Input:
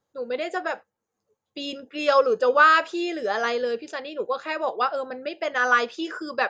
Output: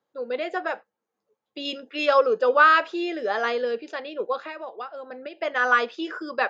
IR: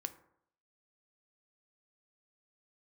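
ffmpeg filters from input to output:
-filter_complex "[0:a]asettb=1/sr,asplit=3[a][b][c];[a]atrim=end=1.654[d];[b]atrim=start=1.65:end=2.06,asetpts=PTS-STARTPTS,afade=t=in:d=0.004:c=qsin,afade=t=out:st=0.406:d=0.004:c=qsin,highshelf=f=2.3k:g=8[e];[c]atrim=start=2.056[f];[d][e]acrossfade=d=0.004:c1=hsin:c2=qsin[g];[g][f]acrossfade=d=0.004:c1=qsin:c2=hsin,asettb=1/sr,asplit=3[h][i][j];[h]atrim=end=4.444[k];[i]atrim=start=4.44:end=5.41,asetpts=PTS-STARTPTS,afade=t=in:d=0.004:c=qsin,afade=t=out:st=0.966:d=0.004:c=qsin,acompressor=threshold=-33dB:ratio=6[l];[j]atrim=start=5.406[m];[k][l]acrossfade=d=0.004:c1=hsin:c2=qsin[n];[n][m]acrossfade=d=0.004:c1=qsin:c2=hsin,acrossover=split=170 5000:gain=0.126 1 0.158[o][p][q];[o][p][q]amix=inputs=3:normalize=0"

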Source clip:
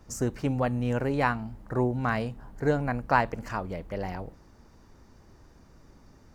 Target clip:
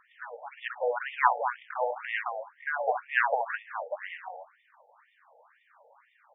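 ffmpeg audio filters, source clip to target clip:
-filter_complex "[0:a]asettb=1/sr,asplit=3[a][b][c];[a]atrim=end=1.274[d];[b]atrim=start=1.27:end=1.9,asetpts=PTS-STARTPTS,afade=t=in:d=0.004:c=qsin,afade=t=out:st=0.626:d=0.004:c=qsin,acrusher=bits=4:dc=4:mix=0:aa=0.000001[e];[c]atrim=start=1.896[f];[d][e]acrossfade=d=0.004:c1=hsin:c2=qsin[g];[g][f]acrossfade=d=0.004:c1=qsin:c2=hsin,aecho=1:1:67.06|209.9:0.355|0.355,afftfilt=real='re*between(b*sr/1024,620*pow(2600/620,0.5+0.5*sin(2*PI*2*pts/sr))/1.41,620*pow(2600/620,0.5+0.5*sin(2*PI*2*pts/sr))*1.41)':imag='im*between(b*sr/1024,620*pow(2600/620,0.5+0.5*sin(2*PI*2*pts/sr))/1.41,620*pow(2600/620,0.5+0.5*sin(2*PI*2*pts/sr))*1.41)':win_size=1024:overlap=0.75,volume=7dB"

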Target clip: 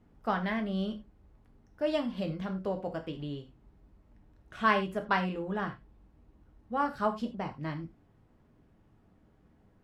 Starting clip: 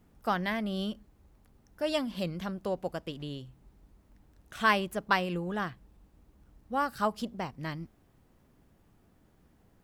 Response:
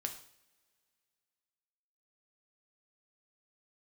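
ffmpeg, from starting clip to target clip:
-filter_complex "[0:a]aemphasis=mode=reproduction:type=75fm[a];[1:a]atrim=start_sample=2205,atrim=end_sample=6615,asetrate=61740,aresample=44100[b];[a][b]afir=irnorm=-1:irlink=0,volume=3dB"

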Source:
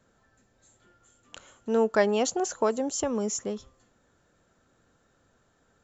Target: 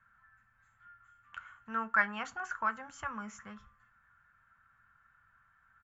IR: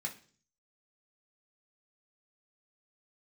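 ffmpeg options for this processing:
-filter_complex "[0:a]firequalizer=gain_entry='entry(100,0);entry(380,-29);entry(980,0);entry(1400,11);entry(3900,-19);entry(8900,-24)':delay=0.05:min_phase=1,asplit=2[a][b];[1:a]atrim=start_sample=2205,asetrate=74970,aresample=44100[c];[b][c]afir=irnorm=-1:irlink=0,volume=-3dB[d];[a][d]amix=inputs=2:normalize=0"

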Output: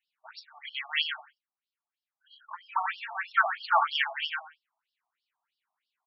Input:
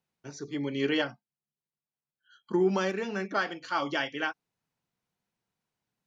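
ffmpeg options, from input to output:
-filter_complex "[0:a]asettb=1/sr,asplit=3[a][b][c];[a]atrim=end=2.544[d];[b]atrim=start=2.54:end=3.15,asetpts=PTS-STARTPTS,afade=t=in:d=0.004:c=qsin,afade=t=out:st=0.606:d=0.004:c=qsin,aemphasis=mode=reproduction:type=50fm[e];[c]atrim=start=3.146[f];[d][e]acrossfade=d=0.004:c1=hsin:c2=qsin[g];[g][f]acrossfade=d=0.004:c1=qsin:c2=hsin,asplit=2[h][i];[i]aecho=0:1:91|182|273:0.376|0.094|0.0235[j];[h][j]amix=inputs=2:normalize=0,afftfilt=real='re*between(b*sr/1024,860*pow(4000/860,0.5+0.5*sin(2*PI*3.1*pts/sr))/1.41,860*pow(4000/860,0.5+0.5*sin(2*PI*3.1*pts/sr))*1.41)':imag='im*between(b*sr/1024,860*pow(4000/860,0.5+0.5*sin(2*PI*3.1*pts/sr))/1.41,860*pow(4000/860,0.5+0.5*sin(2*PI*3.1*pts/sr))*1.41)':win_size=1024:overlap=0.75,volume=8.5dB"

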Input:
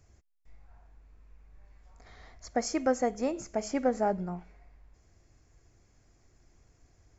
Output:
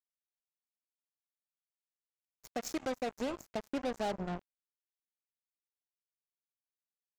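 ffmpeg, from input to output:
-filter_complex "[0:a]asettb=1/sr,asplit=3[a][b][c];[a]atrim=end=3.534[d];[b]atrim=start=3.53:end=3.93,asetpts=PTS-STARTPTS,afade=t=in:d=0.004:c=qsin,afade=t=out:st=0.396:d=0.004:c=qsin,highshelf=f=3.9k:g=-9.5[e];[c]atrim=start=3.926[f];[d][e]acrossfade=d=0.004:c1=hsin:c2=qsin[g];[g][f]acrossfade=d=0.004:c1=qsin:c2=hsin,alimiter=level_in=2dB:limit=-24dB:level=0:latency=1:release=301,volume=-2dB,acrusher=bits=5:mix=0:aa=0.5"

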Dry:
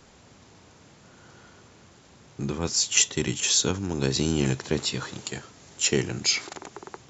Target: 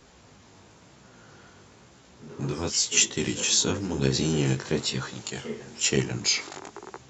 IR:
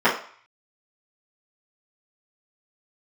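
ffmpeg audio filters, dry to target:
-filter_complex "[0:a]flanger=delay=15:depth=6.6:speed=1,asplit=2[a][b];[b]asetrate=48000,aresample=44100[c];[1:a]atrim=start_sample=2205[d];[c][d]afir=irnorm=-1:irlink=0,volume=-32dB[e];[a][e]amix=inputs=2:normalize=0,volume=2.5dB"

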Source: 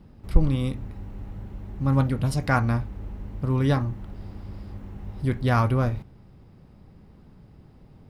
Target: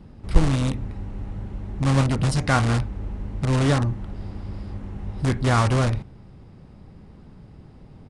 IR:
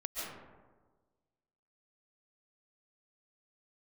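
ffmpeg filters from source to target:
-filter_complex "[0:a]asplit=2[a][b];[b]aeval=exprs='(mod(9.44*val(0)+1,2)-1)/9.44':c=same,volume=-6.5dB[c];[a][c]amix=inputs=2:normalize=0,aresample=22050,aresample=44100,volume=1.5dB"

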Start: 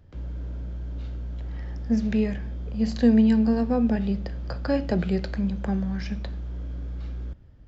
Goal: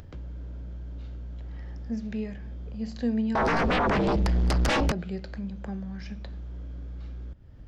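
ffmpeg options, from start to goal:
-filter_complex "[0:a]acompressor=mode=upward:threshold=-23dB:ratio=2.5,asettb=1/sr,asplit=3[a][b][c];[a]atrim=end=3.354[d];[b]atrim=start=3.35:end=4.92,asetpts=PTS-STARTPTS,afade=t=in:d=0.004:c=qsin,afade=t=out:st=1.566:d=0.004:c=qsin,aeval=exprs='0.266*sin(PI/2*6.31*val(0)/0.266)':c=same[e];[c]atrim=start=4.916[f];[d][e]acrossfade=d=0.004:c1=hsin:c2=qsin[g];[g][f]acrossfade=d=0.004:c1=qsin:c2=hsin,volume=-9dB"

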